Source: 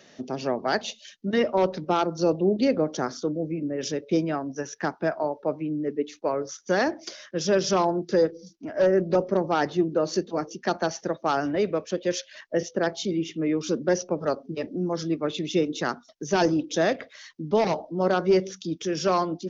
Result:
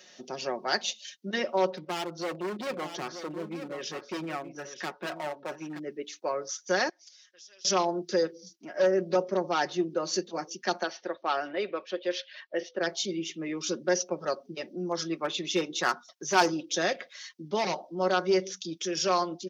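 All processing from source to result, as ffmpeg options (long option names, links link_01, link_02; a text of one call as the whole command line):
ffmpeg -i in.wav -filter_complex "[0:a]asettb=1/sr,asplit=3[link_01][link_02][link_03];[link_01]atrim=end=1.704[link_04];[link_02]atrim=start=1.7:end=5.79,asetpts=PTS-STARTPTS,afade=type=in:duration=0.004:curve=qsin,afade=type=out:start_time=4.086:duration=0.004:curve=qsin,lowpass=3500,asoftclip=type=hard:threshold=-25dB,aecho=1:1:926:0.316,atrim=end_sample=180369[link_05];[link_03]atrim=start=5.786[link_06];[link_04][link_05]acrossfade=duration=0.004:curve1=hsin:curve2=qsin[link_07];[link_07][link_06]acrossfade=duration=0.004:curve1=qsin:curve2=hsin,asettb=1/sr,asplit=3[link_08][link_09][link_10];[link_08]atrim=end=6.894[link_11];[link_09]atrim=start=6.89:end=7.65,asetpts=PTS-STARTPTS,afade=type=in:duration=0.004:curve=qsin,afade=type=out:start_time=0.756:duration=0.004:curve=qsin,aderivative,acompressor=threshold=-55dB:ratio=3:attack=3.2:release=140:knee=1:detection=peak,highpass=180,lowpass=6400[link_12];[link_10]atrim=start=7.646[link_13];[link_11][link_12]acrossfade=duration=0.004:curve1=hsin:curve2=qsin[link_14];[link_14][link_13]acrossfade=duration=0.004:curve1=qsin:curve2=hsin,asettb=1/sr,asplit=3[link_15][link_16][link_17];[link_15]atrim=end=10.834[link_18];[link_16]atrim=start=10.83:end=12.81,asetpts=PTS-STARTPTS,afade=type=in:duration=0.004:curve=qsin,afade=type=out:start_time=1.976:duration=0.004:curve=qsin,lowpass=frequency=4000:width=0.5412,lowpass=frequency=4000:width=1.3066,equalizer=frequency=160:width=2:gain=-13.5[link_19];[link_17]atrim=start=12.806[link_20];[link_18][link_19]acrossfade=duration=0.004:curve1=hsin:curve2=qsin[link_21];[link_21][link_20]acrossfade=duration=0.004:curve1=qsin:curve2=hsin,asettb=1/sr,asplit=3[link_22][link_23][link_24];[link_22]atrim=end=14.914[link_25];[link_23]atrim=start=14.91:end=16.5,asetpts=PTS-STARTPTS,afade=type=in:duration=0.004:curve=qsin,afade=type=out:start_time=1.586:duration=0.004:curve=qsin,equalizer=frequency=1100:width=1:gain=7,aeval=exprs='clip(val(0),-1,0.168)':channel_layout=same[link_26];[link_24]atrim=start=16.496[link_27];[link_25][link_26]acrossfade=duration=0.004:curve1=hsin:curve2=qsin[link_28];[link_28][link_27]acrossfade=duration=0.004:curve1=qsin:curve2=hsin,highpass=frequency=380:poles=1,highshelf=frequency=2300:gain=8.5,aecho=1:1:5.5:0.51,volume=-5dB" out.wav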